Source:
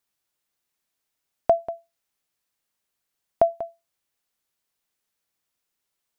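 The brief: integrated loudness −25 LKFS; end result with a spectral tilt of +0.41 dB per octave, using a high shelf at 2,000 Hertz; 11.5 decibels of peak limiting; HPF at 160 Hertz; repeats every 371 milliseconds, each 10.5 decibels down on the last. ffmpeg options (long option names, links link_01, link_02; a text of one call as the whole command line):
ffmpeg -i in.wav -af "highpass=160,highshelf=frequency=2000:gain=6,alimiter=limit=-17.5dB:level=0:latency=1,aecho=1:1:371|742|1113:0.299|0.0896|0.0269,volume=8dB" out.wav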